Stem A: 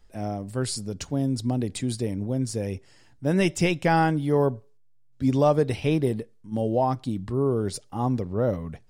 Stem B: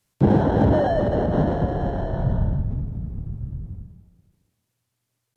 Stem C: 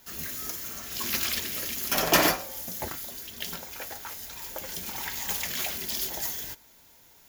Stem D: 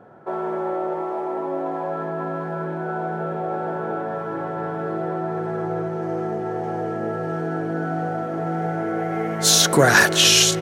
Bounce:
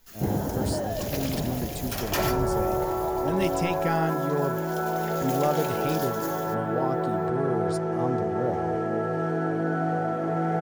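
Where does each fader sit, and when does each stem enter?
-6.5 dB, -10.0 dB, -8.0 dB, -1.0 dB; 0.00 s, 0.00 s, 0.00 s, 1.90 s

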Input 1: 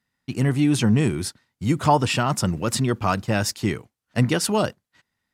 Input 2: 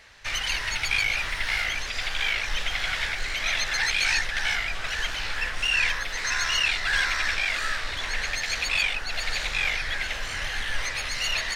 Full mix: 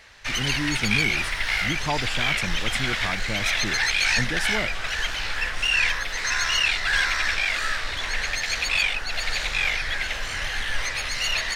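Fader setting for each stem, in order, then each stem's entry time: -9.5 dB, +2.0 dB; 0.00 s, 0.00 s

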